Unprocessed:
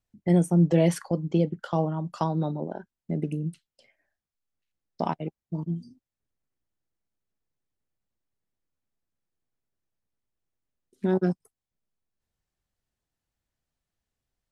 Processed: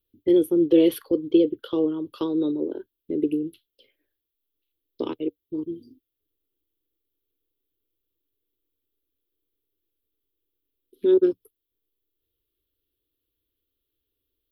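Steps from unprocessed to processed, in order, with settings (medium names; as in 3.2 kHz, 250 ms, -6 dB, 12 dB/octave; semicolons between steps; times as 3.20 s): FFT filter 110 Hz 0 dB, 180 Hz -21 dB, 290 Hz +10 dB, 470 Hz +9 dB, 700 Hz -18 dB, 1.2 kHz -4 dB, 1.9 kHz -9 dB, 3.4 kHz +10 dB, 7.5 kHz -23 dB, 12 kHz +14 dB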